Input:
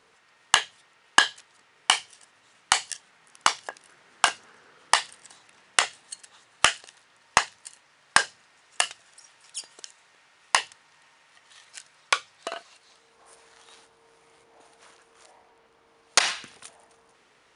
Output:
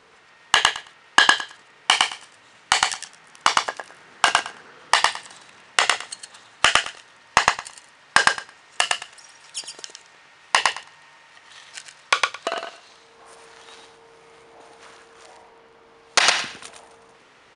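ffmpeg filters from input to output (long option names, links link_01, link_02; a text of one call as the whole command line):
ffmpeg -i in.wav -filter_complex "[0:a]highshelf=frequency=8700:gain=-11,asplit=2[link_01][link_02];[link_02]aecho=0:1:109|218|327:0.501|0.0802|0.0128[link_03];[link_01][link_03]amix=inputs=2:normalize=0,aresample=22050,aresample=44100,alimiter=level_in=9dB:limit=-1dB:release=50:level=0:latency=1,volume=-1dB" out.wav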